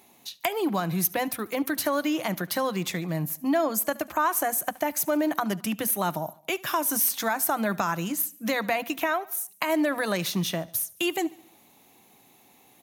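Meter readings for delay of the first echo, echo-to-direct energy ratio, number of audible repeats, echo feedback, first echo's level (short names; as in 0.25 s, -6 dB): 72 ms, -20.5 dB, 3, 53%, -22.0 dB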